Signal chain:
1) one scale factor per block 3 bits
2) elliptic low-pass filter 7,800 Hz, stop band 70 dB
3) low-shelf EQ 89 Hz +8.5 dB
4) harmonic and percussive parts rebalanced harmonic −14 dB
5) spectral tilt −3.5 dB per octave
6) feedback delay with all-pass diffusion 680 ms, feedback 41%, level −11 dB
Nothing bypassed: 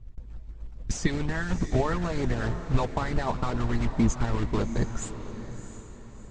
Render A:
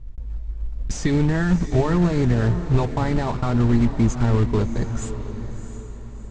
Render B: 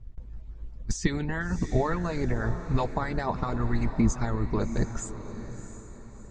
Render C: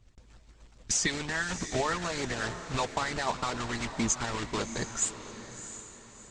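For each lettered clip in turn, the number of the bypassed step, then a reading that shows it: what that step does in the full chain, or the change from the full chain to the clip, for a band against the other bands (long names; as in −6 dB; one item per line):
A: 4, 125 Hz band +6.5 dB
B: 1, distortion level −10 dB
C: 5, 125 Hz band −12.0 dB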